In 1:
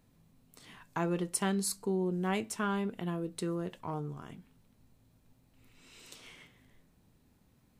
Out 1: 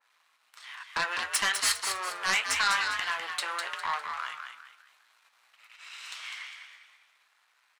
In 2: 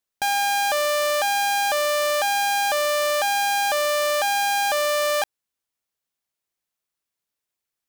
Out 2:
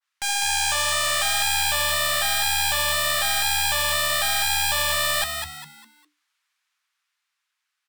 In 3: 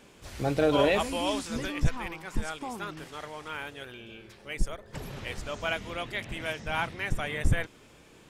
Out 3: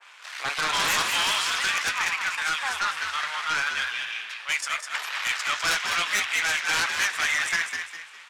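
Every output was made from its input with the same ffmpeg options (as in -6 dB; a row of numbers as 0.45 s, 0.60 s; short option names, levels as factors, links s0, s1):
-filter_complex "[0:a]aeval=exprs='if(lt(val(0),0),0.251*val(0),val(0))':c=same,highpass=f=1200:w=0.5412,highpass=f=1200:w=1.3066,aemphasis=mode=reproduction:type=riaa,dynaudnorm=f=110:g=21:m=1.41,asplit=2[s0][s1];[s1]alimiter=level_in=2.37:limit=0.0631:level=0:latency=1,volume=0.422,volume=0.708[s2];[s0][s2]amix=inputs=2:normalize=0,aeval=exprs='0.119*sin(PI/2*5.01*val(0)/0.119)':c=same,flanger=delay=6.9:depth=5.1:regen=-61:speed=1.9:shape=triangular,asplit=5[s3][s4][s5][s6][s7];[s4]adelay=202,afreqshift=74,volume=0.501[s8];[s5]adelay=404,afreqshift=148,volume=0.18[s9];[s6]adelay=606,afreqshift=222,volume=0.0653[s10];[s7]adelay=808,afreqshift=296,volume=0.0234[s11];[s3][s8][s9][s10][s11]amix=inputs=5:normalize=0,adynamicequalizer=threshold=0.0126:dfrequency=1600:dqfactor=0.7:tfrequency=1600:tqfactor=0.7:attack=5:release=100:ratio=0.375:range=2:mode=boostabove:tftype=highshelf"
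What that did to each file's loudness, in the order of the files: +5.0 LU, +0.5 LU, +7.0 LU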